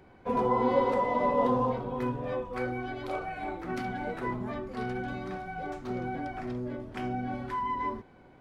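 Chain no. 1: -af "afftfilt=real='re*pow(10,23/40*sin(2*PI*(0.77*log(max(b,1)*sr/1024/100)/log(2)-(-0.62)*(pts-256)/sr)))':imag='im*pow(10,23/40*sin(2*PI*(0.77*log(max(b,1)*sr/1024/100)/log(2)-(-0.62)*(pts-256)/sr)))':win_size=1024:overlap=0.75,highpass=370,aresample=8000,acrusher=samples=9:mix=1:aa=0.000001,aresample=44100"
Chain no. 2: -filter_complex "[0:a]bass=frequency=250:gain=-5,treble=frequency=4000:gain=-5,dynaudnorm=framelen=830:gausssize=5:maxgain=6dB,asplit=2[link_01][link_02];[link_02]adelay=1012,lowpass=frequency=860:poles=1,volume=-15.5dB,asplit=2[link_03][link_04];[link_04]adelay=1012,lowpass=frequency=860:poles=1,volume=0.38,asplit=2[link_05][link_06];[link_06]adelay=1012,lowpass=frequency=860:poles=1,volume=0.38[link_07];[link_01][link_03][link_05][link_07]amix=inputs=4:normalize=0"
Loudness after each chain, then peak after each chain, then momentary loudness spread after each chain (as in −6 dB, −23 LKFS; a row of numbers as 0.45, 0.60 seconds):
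−28.0, −29.5 LKFS; −6.5, −13.0 dBFS; 15, 7 LU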